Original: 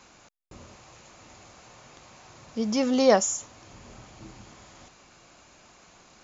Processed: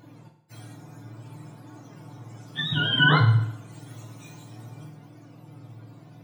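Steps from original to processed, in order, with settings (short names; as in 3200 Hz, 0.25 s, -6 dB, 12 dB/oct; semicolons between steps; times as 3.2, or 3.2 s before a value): spectrum mirrored in octaves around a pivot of 890 Hz; flange 0.58 Hz, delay 2.6 ms, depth 9.8 ms, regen +35%; FDN reverb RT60 0.76 s, low-frequency decay 0.9×, high-frequency decay 0.85×, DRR 2.5 dB; gain +4.5 dB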